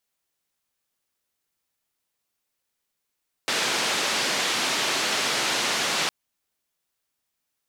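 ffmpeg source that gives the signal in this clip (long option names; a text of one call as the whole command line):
ffmpeg -f lavfi -i "anoisesrc=color=white:duration=2.61:sample_rate=44100:seed=1,highpass=frequency=210,lowpass=frequency=4900,volume=-13.8dB" out.wav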